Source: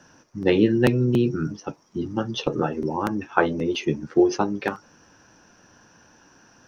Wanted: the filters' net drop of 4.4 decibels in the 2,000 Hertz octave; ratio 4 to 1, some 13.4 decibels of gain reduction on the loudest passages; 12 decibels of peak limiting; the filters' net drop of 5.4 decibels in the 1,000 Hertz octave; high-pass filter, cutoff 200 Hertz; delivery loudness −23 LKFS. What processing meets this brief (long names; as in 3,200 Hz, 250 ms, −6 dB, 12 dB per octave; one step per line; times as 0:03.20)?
high-pass filter 200 Hz
parametric band 1,000 Hz −6.5 dB
parametric band 2,000 Hz −3.5 dB
downward compressor 4 to 1, threshold −30 dBFS
level +13 dB
brickwall limiter −12.5 dBFS